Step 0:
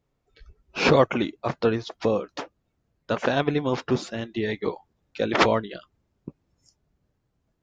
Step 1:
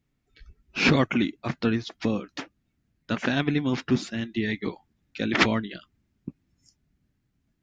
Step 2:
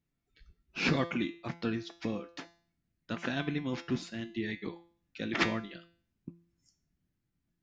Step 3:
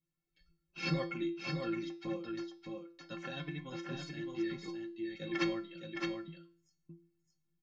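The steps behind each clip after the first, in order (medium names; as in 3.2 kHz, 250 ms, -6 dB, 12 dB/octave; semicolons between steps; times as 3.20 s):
ten-band graphic EQ 250 Hz +6 dB, 500 Hz -10 dB, 1 kHz -6 dB, 2 kHz +4 dB
feedback comb 170 Hz, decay 0.46 s, harmonics all, mix 70%
inharmonic resonator 160 Hz, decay 0.28 s, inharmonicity 0.03; delay 615 ms -4 dB; trim +5 dB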